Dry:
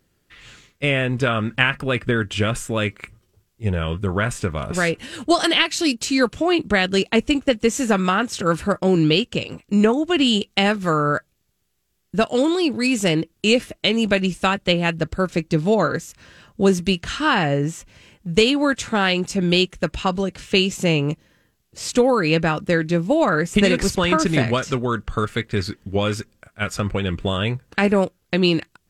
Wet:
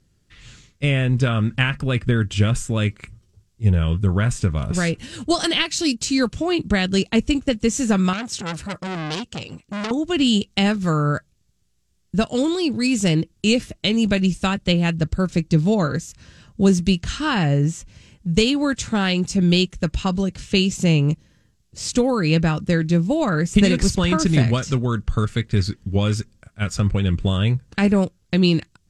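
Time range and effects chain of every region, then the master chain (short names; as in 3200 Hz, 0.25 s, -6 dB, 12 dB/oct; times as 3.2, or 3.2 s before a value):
8.13–9.91 low shelf 120 Hz -9.5 dB + core saturation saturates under 3400 Hz
whole clip: LPF 7400 Hz 12 dB/oct; tone controls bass +12 dB, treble +10 dB; gain -5 dB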